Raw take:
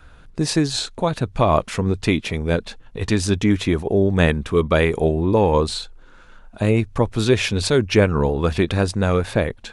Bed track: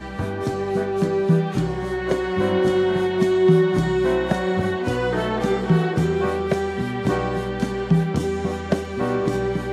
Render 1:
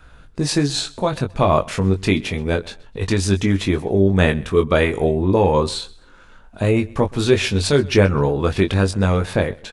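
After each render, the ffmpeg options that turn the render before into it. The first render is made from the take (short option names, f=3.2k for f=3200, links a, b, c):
-filter_complex "[0:a]asplit=2[a][b];[b]adelay=21,volume=-6dB[c];[a][c]amix=inputs=2:normalize=0,aecho=1:1:128|256:0.0708|0.0219"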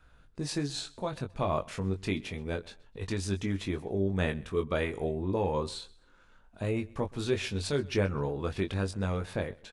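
-af "volume=-14dB"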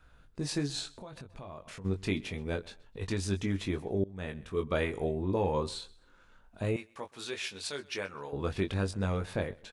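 -filter_complex "[0:a]asplit=3[a][b][c];[a]afade=t=out:st=0.89:d=0.02[d];[b]acompressor=threshold=-43dB:ratio=5:attack=3.2:release=140:knee=1:detection=peak,afade=t=in:st=0.89:d=0.02,afade=t=out:st=1.84:d=0.02[e];[c]afade=t=in:st=1.84:d=0.02[f];[d][e][f]amix=inputs=3:normalize=0,asettb=1/sr,asplit=3[g][h][i];[g]atrim=end=6.764[j];[h]atrim=start=6.76:end=8.33,asetpts=PTS-STARTPTS,afade=t=in:d=0.004:c=qsin,afade=t=out:st=1.566:d=0.004:c=qsin,highpass=f=1.3k:p=1[k];[i]atrim=start=8.326[l];[j][k]acrossfade=d=0.004:c1=hsin:c2=qsin[m];[m][l]acrossfade=d=0.004:c1=qsin:c2=hsin,asplit=2[n][o];[n]atrim=end=4.04,asetpts=PTS-STARTPTS,afade=t=out:st=4.036:d=0.004:c=hsin:silence=0.0707946[p];[o]atrim=start=4.04,asetpts=PTS-STARTPTS,afade=t=in:d=0.71:silence=0.0707946[q];[p][q]concat=n=2:v=0:a=1"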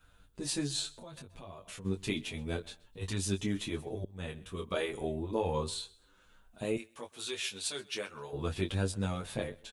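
-filter_complex "[0:a]aexciter=amount=1.8:drive=5.5:freq=2.8k,asplit=2[a][b];[b]adelay=8.4,afreqshift=0.69[c];[a][c]amix=inputs=2:normalize=1"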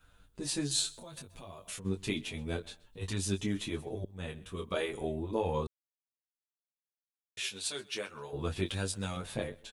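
-filter_complex "[0:a]asettb=1/sr,asplit=3[a][b][c];[a]atrim=end=0.714[d];[b]atrim=start=0.71:end=1.8,asetpts=PTS-STARTPTS,afade=t=in:d=0.004:c=qsin,afade=t=out:st=1.086:d=0.004:c=qsin,aemphasis=mode=production:type=cd[e];[c]atrim=start=1.796[f];[d][e]acrossfade=d=0.004:c1=hsin:c2=qsin[g];[g][f]acrossfade=d=0.004:c1=qsin:c2=hsin,asettb=1/sr,asplit=3[h][i][j];[h]atrim=end=8.664[k];[i]atrim=start=8.66:end=9.17,asetpts=PTS-STARTPTS,afade=t=in:d=0.004:c=qsin,afade=t=out:st=0.506:d=0.004:c=qsin,tiltshelf=f=1.3k:g=-4.5[l];[j]atrim=start=9.166[m];[k][l]acrossfade=d=0.004:c1=hsin:c2=qsin[n];[n][m]acrossfade=d=0.004:c1=qsin:c2=hsin,asplit=3[o][p][q];[o]atrim=end=5.67,asetpts=PTS-STARTPTS,afade=t=out:st=5.666:d=0.004:c=hsin[r];[p]atrim=start=5.67:end=7.37,asetpts=PTS-STARTPTS,volume=0[s];[q]atrim=start=7.37,asetpts=PTS-STARTPTS,afade=t=in:d=0.004:c=hsin[t];[r][s][t]concat=n=3:v=0:a=1"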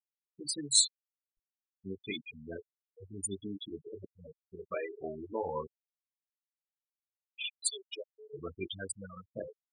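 -af "afftfilt=real='re*gte(hypot(re,im),0.0501)':imag='im*gte(hypot(re,im),0.0501)':win_size=1024:overlap=0.75,aemphasis=mode=production:type=riaa"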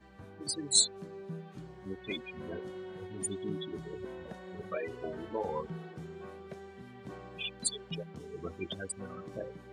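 -filter_complex "[1:a]volume=-24.5dB[a];[0:a][a]amix=inputs=2:normalize=0"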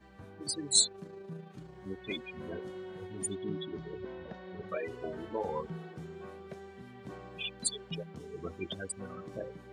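-filter_complex "[0:a]asettb=1/sr,asplit=3[a][b][c];[a]atrim=end=0.884[d];[b]atrim=start=0.88:end=1.75,asetpts=PTS-STARTPTS,afade=t=in:d=0.004:c=qsin,afade=t=out:st=0.866:d=0.004:c=qsin,tremolo=f=27:d=0.4[e];[c]atrim=start=1.746[f];[d][e]acrossfade=d=0.004:c1=hsin:c2=qsin[g];[g][f]acrossfade=d=0.004:c1=qsin:c2=hsin,asettb=1/sr,asplit=3[h][i][j];[h]atrim=end=3.354[k];[i]atrim=start=3.35:end=4.69,asetpts=PTS-STARTPTS,afade=t=in:d=0.004:c=qsin,afade=t=out:st=1.336:d=0.004:c=qsin,lowpass=f=4.9k:w=0.5412,lowpass=f=4.9k:w=1.3066[l];[j]atrim=start=4.686[m];[k][l]acrossfade=d=0.004:c1=hsin:c2=qsin[n];[n][m]acrossfade=d=0.004:c1=qsin:c2=hsin"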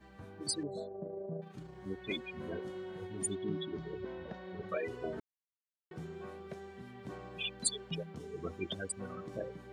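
-filter_complex "[0:a]asettb=1/sr,asplit=3[a][b][c];[a]atrim=end=0.634[d];[b]atrim=start=0.63:end=1.42,asetpts=PTS-STARTPTS,afade=t=in:d=0.004:c=qsin,afade=t=out:st=0.786:d=0.004:c=qsin,lowpass=f=610:t=q:w=6.4[e];[c]atrim=start=1.416[f];[d][e]acrossfade=d=0.004:c1=hsin:c2=qsin[g];[g][f]acrossfade=d=0.004:c1=qsin:c2=hsin,asplit=3[h][i][j];[h]atrim=end=5.2,asetpts=PTS-STARTPTS,afade=t=out:st=5.196:d=0.004:c=hsin[k];[i]atrim=start=5.2:end=5.91,asetpts=PTS-STARTPTS,volume=0[l];[j]atrim=start=5.91,asetpts=PTS-STARTPTS,afade=t=in:d=0.004:c=hsin[m];[k][l][m]concat=n=3:v=0:a=1"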